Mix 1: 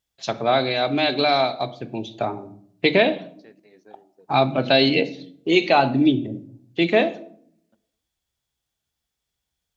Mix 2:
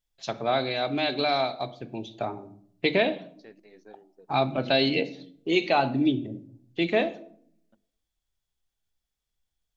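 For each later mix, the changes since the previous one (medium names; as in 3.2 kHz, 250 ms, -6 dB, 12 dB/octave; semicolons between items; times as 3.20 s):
first voice -6.0 dB; master: remove high-pass 64 Hz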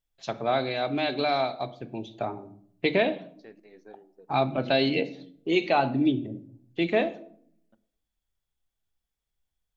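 second voice: send on; master: add peaking EQ 5.2 kHz -4.5 dB 1.6 oct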